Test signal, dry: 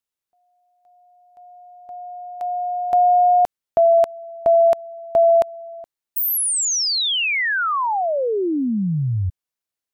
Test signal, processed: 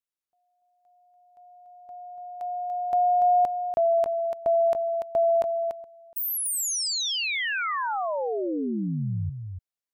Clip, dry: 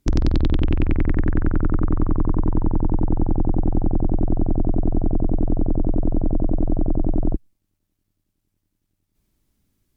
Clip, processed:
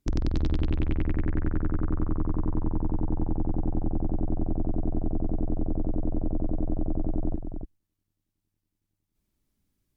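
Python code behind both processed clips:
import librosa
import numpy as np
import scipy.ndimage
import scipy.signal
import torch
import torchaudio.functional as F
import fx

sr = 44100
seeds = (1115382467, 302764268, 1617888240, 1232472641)

y = x + 10.0 ** (-7.0 / 20.0) * np.pad(x, (int(289 * sr / 1000.0), 0))[:len(x)]
y = y * 10.0 ** (-8.0 / 20.0)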